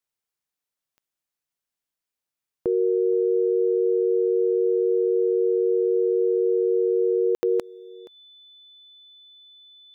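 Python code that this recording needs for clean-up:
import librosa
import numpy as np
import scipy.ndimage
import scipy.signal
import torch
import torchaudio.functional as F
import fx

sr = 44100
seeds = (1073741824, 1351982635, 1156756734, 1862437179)

y = fx.fix_declick_ar(x, sr, threshold=10.0)
y = fx.notch(y, sr, hz=3500.0, q=30.0)
y = fx.fix_ambience(y, sr, seeds[0], print_start_s=1.63, print_end_s=2.13, start_s=7.35, end_s=7.43)
y = fx.fix_echo_inverse(y, sr, delay_ms=474, level_db=-21.0)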